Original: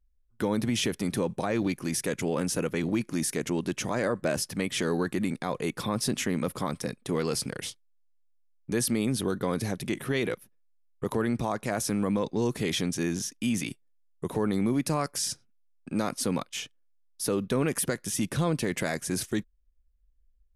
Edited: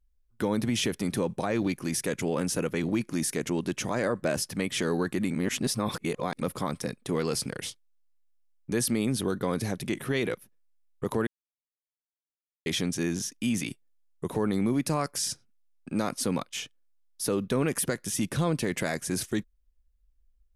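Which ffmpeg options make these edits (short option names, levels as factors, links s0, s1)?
-filter_complex "[0:a]asplit=5[s0][s1][s2][s3][s4];[s0]atrim=end=5.342[s5];[s1]atrim=start=5.338:end=6.412,asetpts=PTS-STARTPTS,areverse[s6];[s2]atrim=start=6.408:end=11.27,asetpts=PTS-STARTPTS,afade=t=out:st=4.858:d=0.004:c=hsin[s7];[s3]atrim=start=11.27:end=12.66,asetpts=PTS-STARTPTS,volume=0[s8];[s4]atrim=start=12.66,asetpts=PTS-STARTPTS,afade=t=in:d=0.004:c=hsin[s9];[s5][s6]acrossfade=d=0.004:c1=hsin:c2=hsin[s10];[s7][s8][s9]concat=n=3:v=0:a=1[s11];[s10][s11]acrossfade=d=0.004:c1=hsin:c2=hsin"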